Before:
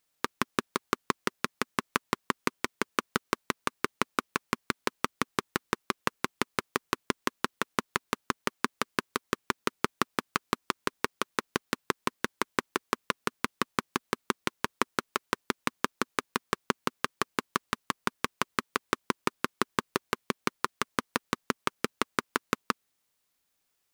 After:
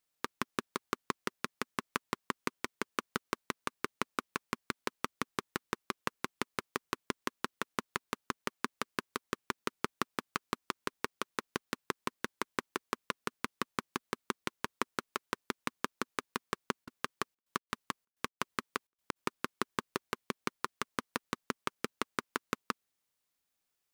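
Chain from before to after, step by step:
0:16.84–0:19.15: gate pattern ".xxxx.x.xxx.x" 128 BPM −60 dB
level −6.5 dB

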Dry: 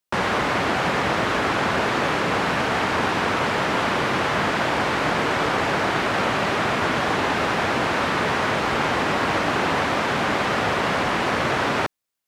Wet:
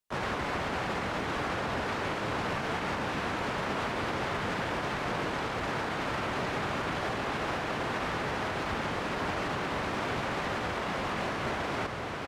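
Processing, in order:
low-shelf EQ 63 Hz +11 dB
feedback delay with all-pass diffusion 503 ms, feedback 48%, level −10 dB
brickwall limiter −18 dBFS, peak gain reduction 9.5 dB
pitch-shifted copies added −7 semitones −4 dB, +3 semitones −9 dB
level −7.5 dB

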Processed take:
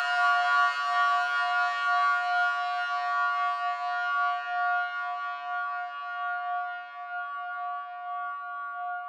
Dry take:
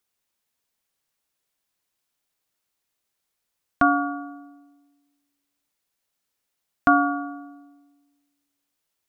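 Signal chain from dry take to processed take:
mid-hump overdrive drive 11 dB, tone 1,900 Hz, clips at −5.5 dBFS
soft clipping −17.5 dBFS, distortion −10 dB
extreme stretch with random phases 28×, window 0.50 s, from 0:06.97
Butterworth high-pass 650 Hz 36 dB per octave
level −3 dB

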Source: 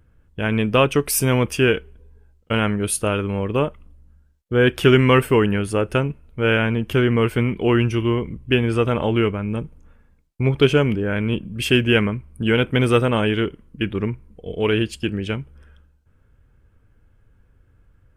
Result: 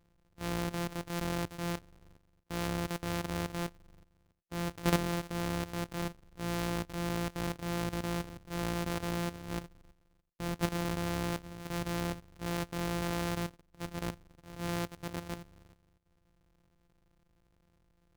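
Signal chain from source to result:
samples sorted by size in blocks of 256 samples
output level in coarse steps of 12 dB
transient designer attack −7 dB, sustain −1 dB
level −9 dB

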